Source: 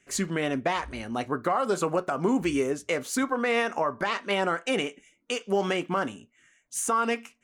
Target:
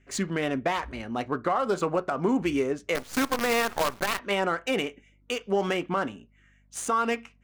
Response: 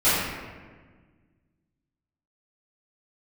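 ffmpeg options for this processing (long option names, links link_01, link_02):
-filter_complex "[0:a]adynamicsmooth=sensitivity=7:basefreq=3700,asettb=1/sr,asplit=3[link_01][link_02][link_03];[link_01]atrim=end=2.954[link_04];[link_02]atrim=start=2.95:end=4.19,asetpts=PTS-STARTPTS,afade=type=in:duration=0.004:curve=qsin,afade=type=out:start_time=1.236:duration=0.004:curve=qsin,acrusher=bits=5:dc=4:mix=0:aa=0.000001[link_05];[link_03]atrim=start=4.186[link_06];[link_04][link_05]acrossfade=duration=0.004:curve1=hsin:curve2=qsin[link_07];[link_07][link_06]acrossfade=duration=0.004:curve1=qsin:curve2=hsin,aeval=exprs='val(0)+0.000891*(sin(2*PI*50*n/s)+sin(2*PI*2*50*n/s)/2+sin(2*PI*3*50*n/s)/3+sin(2*PI*4*50*n/s)/4+sin(2*PI*5*50*n/s)/5)':channel_layout=same"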